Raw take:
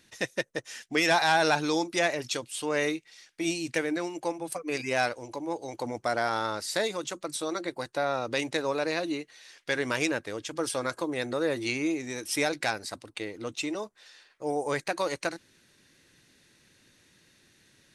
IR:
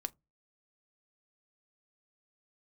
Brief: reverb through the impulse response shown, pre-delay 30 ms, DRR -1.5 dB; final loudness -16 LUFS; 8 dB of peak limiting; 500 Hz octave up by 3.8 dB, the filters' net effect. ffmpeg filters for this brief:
-filter_complex "[0:a]equalizer=f=500:t=o:g=4.5,alimiter=limit=-18.5dB:level=0:latency=1,asplit=2[a][b];[1:a]atrim=start_sample=2205,adelay=30[c];[b][c]afir=irnorm=-1:irlink=0,volume=2.5dB[d];[a][d]amix=inputs=2:normalize=0,volume=11dB"

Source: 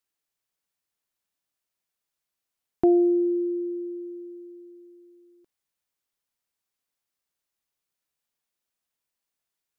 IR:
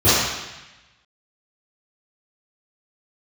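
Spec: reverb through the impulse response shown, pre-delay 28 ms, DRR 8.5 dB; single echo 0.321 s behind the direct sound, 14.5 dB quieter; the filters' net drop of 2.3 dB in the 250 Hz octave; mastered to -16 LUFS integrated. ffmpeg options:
-filter_complex "[0:a]equalizer=f=250:t=o:g=-4.5,aecho=1:1:321:0.188,asplit=2[a][b];[1:a]atrim=start_sample=2205,adelay=28[c];[b][c]afir=irnorm=-1:irlink=0,volume=-33dB[d];[a][d]amix=inputs=2:normalize=0,volume=11dB"

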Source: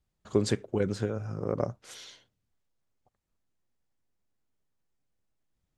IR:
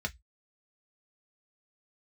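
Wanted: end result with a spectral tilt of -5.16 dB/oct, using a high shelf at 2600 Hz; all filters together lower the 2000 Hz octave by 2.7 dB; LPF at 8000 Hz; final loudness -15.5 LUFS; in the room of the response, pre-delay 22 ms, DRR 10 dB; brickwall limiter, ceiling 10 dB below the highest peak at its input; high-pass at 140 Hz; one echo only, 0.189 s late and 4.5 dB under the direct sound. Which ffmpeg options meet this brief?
-filter_complex "[0:a]highpass=140,lowpass=8k,equalizer=f=2k:t=o:g=-7,highshelf=f=2.6k:g=8,alimiter=limit=-22dB:level=0:latency=1,aecho=1:1:189:0.596,asplit=2[a][b];[1:a]atrim=start_sample=2205,adelay=22[c];[b][c]afir=irnorm=-1:irlink=0,volume=-13.5dB[d];[a][d]amix=inputs=2:normalize=0,volume=18.5dB"

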